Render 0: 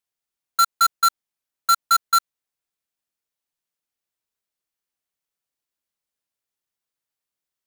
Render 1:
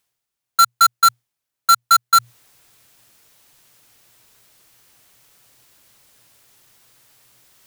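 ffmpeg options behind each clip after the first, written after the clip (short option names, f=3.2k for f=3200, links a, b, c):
-af "equalizer=f=120:t=o:w=0.22:g=13,areverse,acompressor=mode=upward:threshold=-37dB:ratio=2.5,areverse,volume=4.5dB"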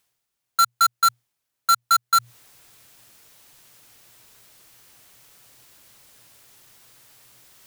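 -af "alimiter=limit=-16dB:level=0:latency=1:release=164,volume=2dB"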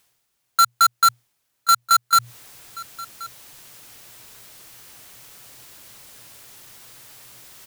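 -af "asoftclip=type=tanh:threshold=-19dB,aecho=1:1:1079:0.1,volume=7.5dB"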